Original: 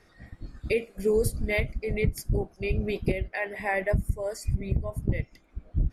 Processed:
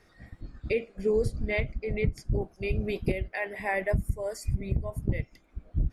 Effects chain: 0.41–2.42 s: distance through air 89 m; trim -1.5 dB

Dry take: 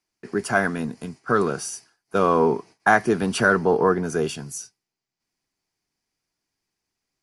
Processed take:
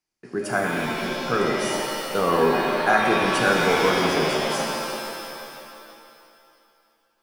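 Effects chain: pitch-shifted reverb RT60 2.5 s, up +7 st, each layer -2 dB, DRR 0 dB; trim -4.5 dB

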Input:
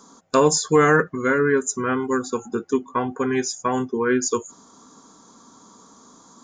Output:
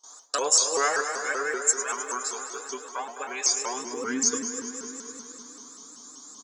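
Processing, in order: octave divider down 2 oct, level -5 dB; thinning echo 103 ms, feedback 80%, high-pass 180 Hz, level -12 dB; gate with hold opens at -40 dBFS; on a send: filtered feedback delay 252 ms, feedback 54%, low-pass 1.7 kHz, level -9.5 dB; on the sum: high-pass sweep 630 Hz -> 250 Hz, 3.47–4.13 s; in parallel at +1.5 dB: compression, threshold -27 dBFS, peak gain reduction 16.5 dB; on the sum: pre-emphasis filter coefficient 0.9; comb 6.9 ms, depth 82%; vibrato with a chosen wave saw up 5.2 Hz, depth 160 cents

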